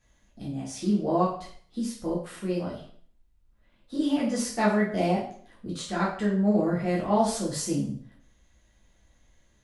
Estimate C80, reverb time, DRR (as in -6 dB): 9.5 dB, 0.50 s, -6.0 dB